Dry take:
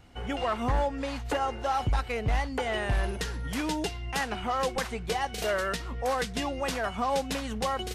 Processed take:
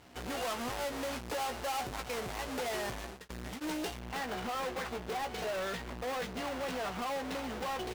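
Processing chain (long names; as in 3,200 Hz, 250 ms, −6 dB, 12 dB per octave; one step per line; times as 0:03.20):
each half-wave held at its own peak
double-tracking delay 16 ms −8.5 dB
brickwall limiter −23 dBFS, peak gain reduction 41 dB
high-pass filter 330 Hz 6 dB per octave
high-shelf EQ 7,300 Hz −9 dB
soft clipping −30.5 dBFS, distortion −11 dB
parametric band 11,000 Hz +3.5 dB 2.2 octaves, from 0:03.99 −4 dB
level −1.5 dB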